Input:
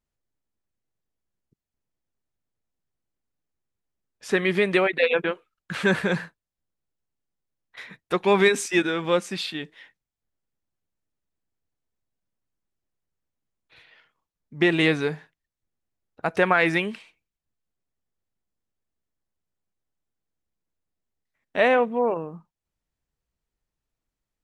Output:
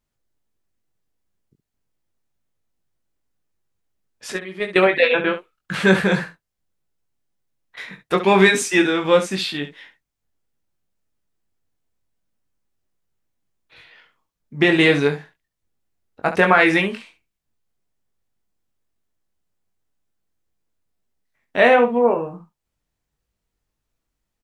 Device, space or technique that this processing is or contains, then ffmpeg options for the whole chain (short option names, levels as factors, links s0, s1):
slapback doubling: -filter_complex "[0:a]asettb=1/sr,asplit=3[s0][s1][s2];[s0]atrim=end=4.324[s3];[s1]atrim=start=4.32:end=4.76,asetpts=PTS-STARTPTS,afade=t=in:d=0.004:c=qsin,afade=t=out:st=0.436:d=0.004:c=qsin,agate=range=0.126:threshold=0.141:ratio=16:detection=peak[s4];[s2]atrim=start=4.756[s5];[s3][s4]acrossfade=d=0.004:c1=hsin:c2=qsin[s6];[s6][s5]acrossfade=d=0.004:c1=qsin:c2=hsin,asplit=3[s7][s8][s9];[s8]adelay=21,volume=0.562[s10];[s9]adelay=68,volume=0.282[s11];[s7][s10][s11]amix=inputs=3:normalize=0,volume=1.68"